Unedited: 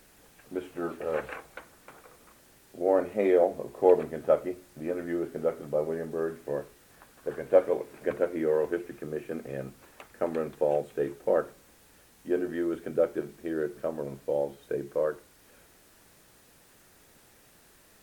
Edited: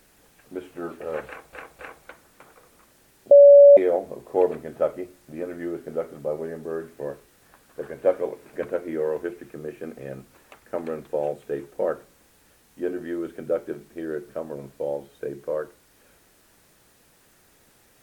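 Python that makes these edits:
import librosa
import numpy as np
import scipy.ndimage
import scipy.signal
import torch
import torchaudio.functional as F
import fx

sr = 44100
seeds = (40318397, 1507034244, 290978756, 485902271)

y = fx.edit(x, sr, fx.repeat(start_s=1.27, length_s=0.26, count=3),
    fx.bleep(start_s=2.79, length_s=0.46, hz=569.0, db=-6.0), tone=tone)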